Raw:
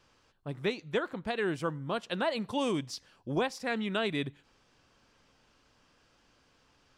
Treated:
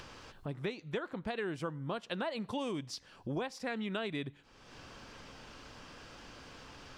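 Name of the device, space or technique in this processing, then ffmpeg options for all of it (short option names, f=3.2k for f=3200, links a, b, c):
upward and downward compression: -af "acompressor=mode=upward:threshold=-37dB:ratio=2.5,acompressor=threshold=-34dB:ratio=4,highshelf=f=7.7k:g=-6"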